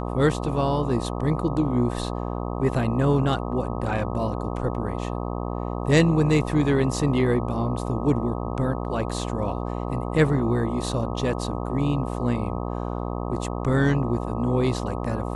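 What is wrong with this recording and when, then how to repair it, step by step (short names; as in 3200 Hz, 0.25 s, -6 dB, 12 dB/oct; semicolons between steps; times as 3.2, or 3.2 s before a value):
buzz 60 Hz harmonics 21 -29 dBFS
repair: de-hum 60 Hz, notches 21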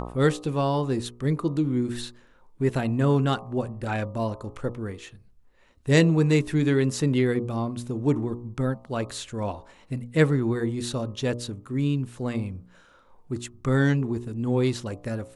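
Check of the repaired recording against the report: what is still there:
none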